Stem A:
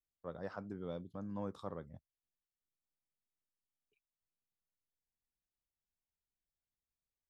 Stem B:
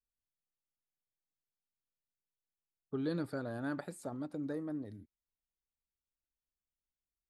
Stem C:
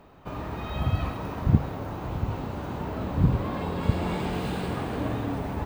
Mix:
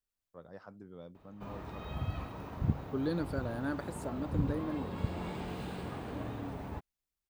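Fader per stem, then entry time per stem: −6.0, +2.0, −10.5 decibels; 0.10, 0.00, 1.15 seconds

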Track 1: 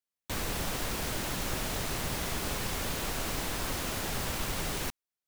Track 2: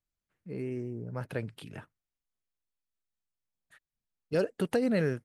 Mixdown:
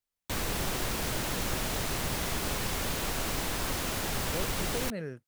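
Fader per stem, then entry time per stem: +1.5, −9.5 decibels; 0.00, 0.00 seconds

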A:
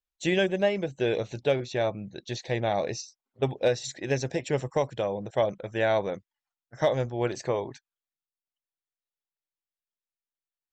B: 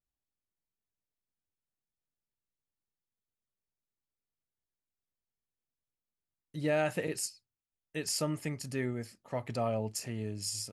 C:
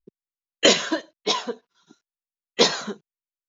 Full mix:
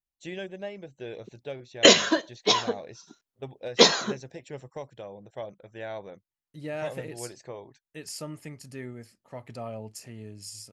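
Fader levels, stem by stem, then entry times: −12.5, −5.0, +1.0 decibels; 0.00, 0.00, 1.20 seconds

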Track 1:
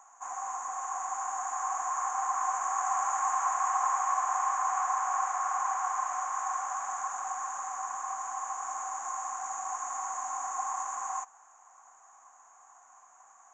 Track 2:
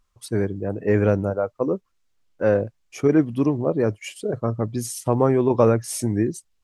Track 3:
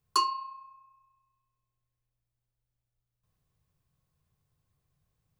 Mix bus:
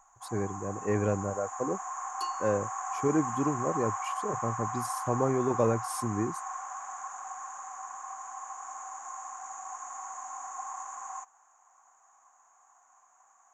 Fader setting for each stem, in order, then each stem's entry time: −5.5, −9.5, −12.0 decibels; 0.00, 0.00, 2.05 seconds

